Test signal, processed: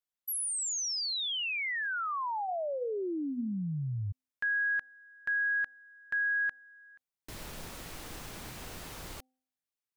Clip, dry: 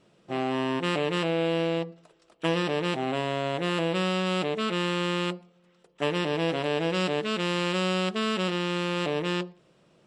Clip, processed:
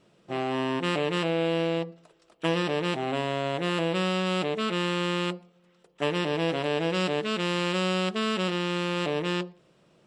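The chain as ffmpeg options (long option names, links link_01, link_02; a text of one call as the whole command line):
ffmpeg -i in.wav -af "bandreject=frequency=257.9:width_type=h:width=4,bandreject=frequency=515.8:width_type=h:width=4,bandreject=frequency=773.7:width_type=h:width=4" out.wav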